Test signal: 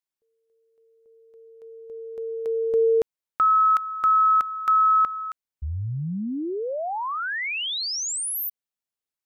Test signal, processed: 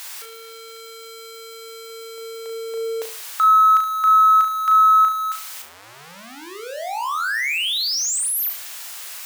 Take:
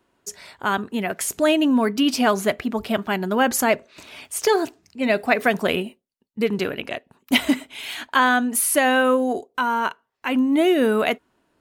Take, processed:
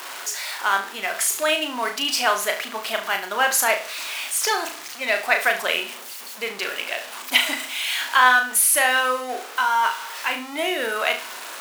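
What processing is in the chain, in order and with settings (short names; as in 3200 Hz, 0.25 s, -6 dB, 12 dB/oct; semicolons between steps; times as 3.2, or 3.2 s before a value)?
zero-crossing step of -28.5 dBFS; HPF 900 Hz 12 dB/oct; flutter echo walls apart 6.1 m, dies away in 0.35 s; gain +1.5 dB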